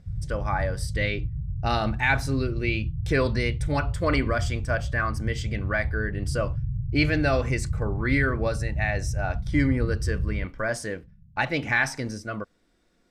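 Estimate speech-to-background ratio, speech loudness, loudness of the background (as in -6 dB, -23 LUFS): 3.0 dB, -28.0 LUFS, -31.0 LUFS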